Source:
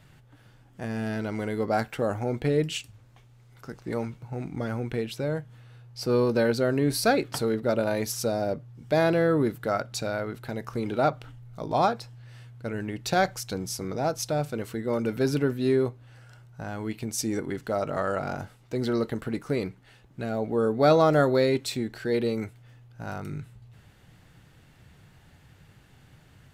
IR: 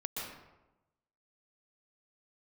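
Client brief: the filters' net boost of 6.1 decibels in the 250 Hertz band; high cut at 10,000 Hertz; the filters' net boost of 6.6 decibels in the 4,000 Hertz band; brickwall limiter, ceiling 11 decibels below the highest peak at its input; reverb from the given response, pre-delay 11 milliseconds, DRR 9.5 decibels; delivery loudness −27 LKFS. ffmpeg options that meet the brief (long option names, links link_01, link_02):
-filter_complex "[0:a]lowpass=10000,equalizer=frequency=250:width_type=o:gain=7.5,equalizer=frequency=4000:width_type=o:gain=8,alimiter=limit=-17.5dB:level=0:latency=1,asplit=2[link_01][link_02];[1:a]atrim=start_sample=2205,adelay=11[link_03];[link_02][link_03]afir=irnorm=-1:irlink=0,volume=-11.5dB[link_04];[link_01][link_04]amix=inputs=2:normalize=0,volume=1dB"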